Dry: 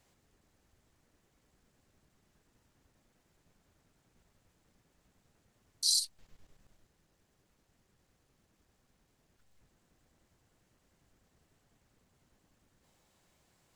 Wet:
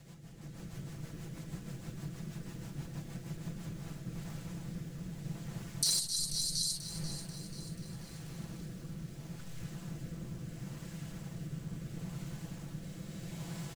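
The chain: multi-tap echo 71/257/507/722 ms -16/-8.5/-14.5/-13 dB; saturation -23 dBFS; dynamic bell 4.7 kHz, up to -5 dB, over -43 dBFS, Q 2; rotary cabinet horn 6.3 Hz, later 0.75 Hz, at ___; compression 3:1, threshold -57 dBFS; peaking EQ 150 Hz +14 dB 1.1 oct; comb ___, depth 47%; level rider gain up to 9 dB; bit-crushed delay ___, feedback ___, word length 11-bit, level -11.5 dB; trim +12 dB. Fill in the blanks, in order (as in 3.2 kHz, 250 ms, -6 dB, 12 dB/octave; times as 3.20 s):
3.38 s, 6 ms, 487 ms, 55%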